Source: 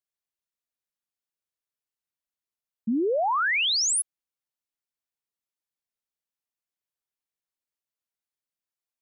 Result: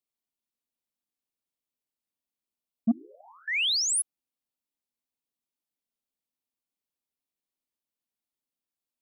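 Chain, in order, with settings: 2.91–3.48 spectral gate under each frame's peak -15 dB weak; fifteen-band EQ 100 Hz -3 dB, 250 Hz +9 dB, 1600 Hz -8 dB, 6300 Hz -3 dB; soft clip -15.5 dBFS, distortion -19 dB

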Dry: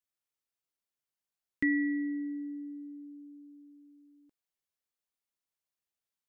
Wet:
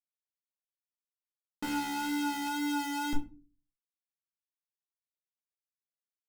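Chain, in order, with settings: HPF 43 Hz 24 dB/oct; low shelf 210 Hz -3.5 dB; sample leveller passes 1; LFO low-pass saw up 0.81 Hz 560–1700 Hz; Schmitt trigger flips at -41 dBFS; vibrato 2 Hz 24 cents; soft clip -40 dBFS, distortion -29 dB; shoebox room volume 150 m³, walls furnished, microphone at 1.4 m; gain +9 dB

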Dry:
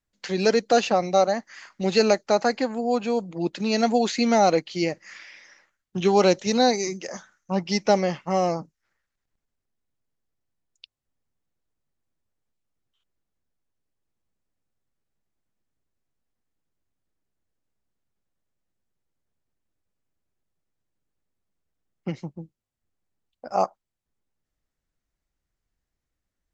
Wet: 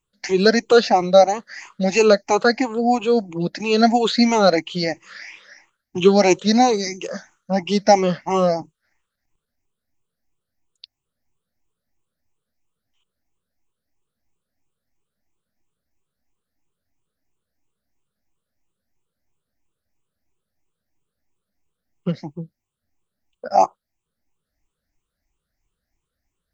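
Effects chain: moving spectral ripple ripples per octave 0.69, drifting +3 Hz, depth 16 dB; gain +2.5 dB

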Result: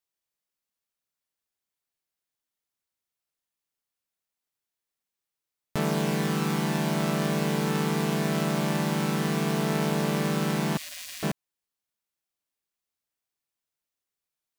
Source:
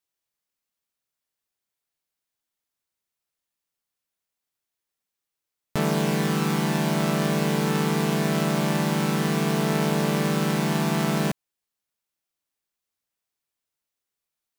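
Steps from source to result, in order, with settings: 10.77–11.23 spectral gate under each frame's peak -25 dB weak; gain -3 dB

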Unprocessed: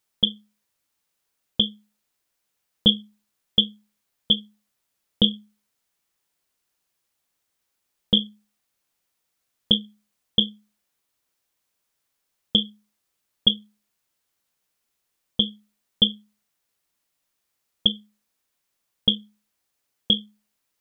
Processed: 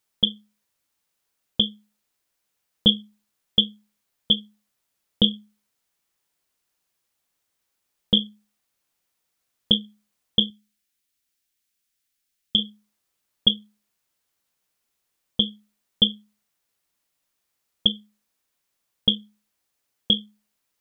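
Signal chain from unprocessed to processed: 10.5–12.59 ten-band EQ 125 Hz -9 dB, 500 Hz -10 dB, 1000 Hz -11 dB

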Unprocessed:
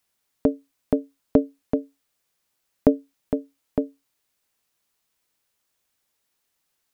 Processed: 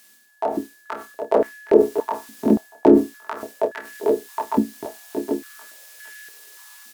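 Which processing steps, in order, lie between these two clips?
octaver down 2 oct, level 0 dB; harmoniser -4 st -1 dB, +7 st -3 dB; on a send: feedback echo 0.766 s, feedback 37%, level -18 dB; on the sum: sine folder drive 4 dB, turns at 3 dBFS; reverse; compressor 10:1, threshold -23 dBFS, peak gain reduction 21.5 dB; reverse; high shelf 2100 Hz +10.5 dB; doubler 28 ms -8.5 dB; whine 1700 Hz -61 dBFS; AGC gain up to 7 dB; stepped high-pass 3.5 Hz 240–1700 Hz; gain +1.5 dB

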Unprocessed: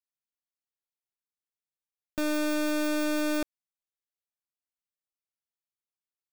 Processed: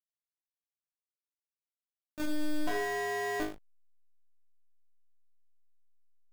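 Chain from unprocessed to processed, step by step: 2.67–3.4 frequency shift +410 Hz; flutter echo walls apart 3.3 m, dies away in 0.61 s; backlash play -26 dBFS; gain -6 dB

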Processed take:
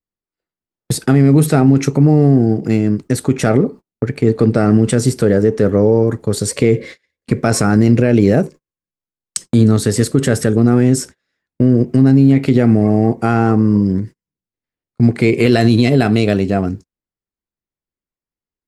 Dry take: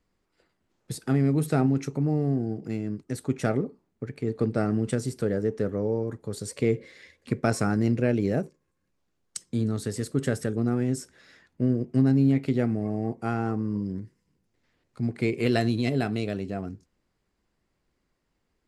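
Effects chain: gate -44 dBFS, range -35 dB; maximiser +17.5 dB; gain -1 dB

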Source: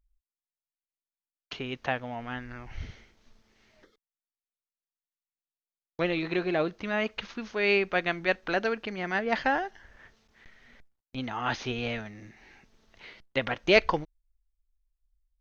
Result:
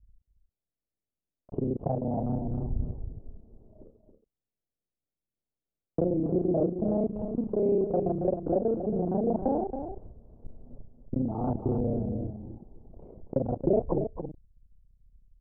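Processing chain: local time reversal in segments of 31 ms; inverse Chebyshev low-pass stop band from 1700 Hz, stop band 50 dB; low shelf 260 Hz +6 dB; compressor 2.5:1, threshold -36 dBFS, peak gain reduction 12 dB; on a send: echo 0.275 s -8 dB; on the sum: mismatched tape noise reduction decoder only; gain +9 dB

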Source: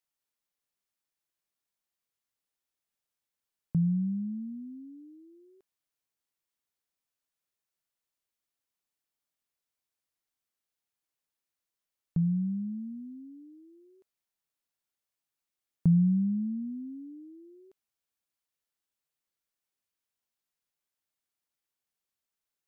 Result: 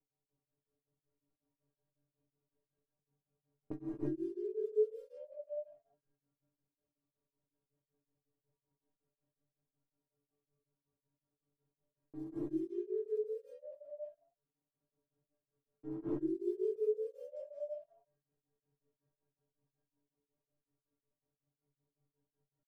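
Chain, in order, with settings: bell 160 Hz -12.5 dB 0.21 oct; crackle 45/s -52 dBFS; pitch shift +10.5 st; metallic resonator 140 Hz, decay 0.38 s, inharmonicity 0.008; low-pass opened by the level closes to 360 Hz, open at -49.5 dBFS; compressor 3:1, threshold -53 dBFS, peak gain reduction 11 dB; non-linear reverb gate 0.36 s rising, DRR -6 dB; beating tremolo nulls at 5.4 Hz; gain +13.5 dB

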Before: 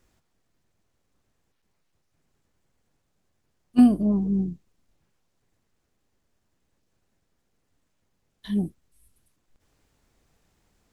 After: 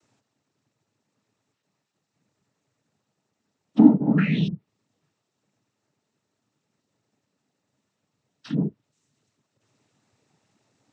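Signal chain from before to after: painted sound rise, 4.17–4.48, 1600–3800 Hz -24 dBFS; treble ducked by the level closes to 1200 Hz, closed at -22 dBFS; noise vocoder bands 12; gain +2 dB

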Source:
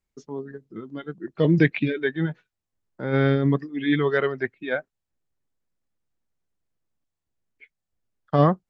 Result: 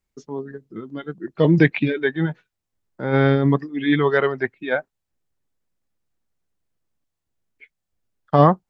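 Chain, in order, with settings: dynamic EQ 880 Hz, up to +7 dB, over -42 dBFS, Q 2.2; gain +3 dB

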